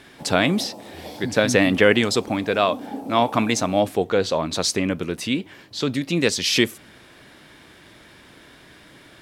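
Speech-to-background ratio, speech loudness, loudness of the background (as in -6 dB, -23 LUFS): 16.5 dB, -21.5 LUFS, -38.0 LUFS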